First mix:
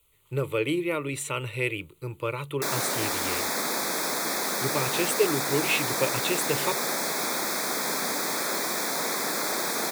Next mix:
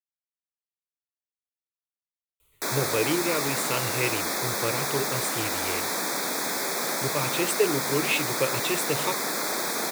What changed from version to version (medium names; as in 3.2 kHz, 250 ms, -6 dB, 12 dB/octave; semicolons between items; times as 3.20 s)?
speech: entry +2.40 s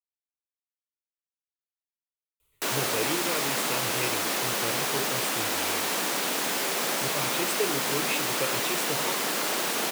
speech -6.0 dB; background: remove Butterworth band-stop 2.9 kHz, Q 2.7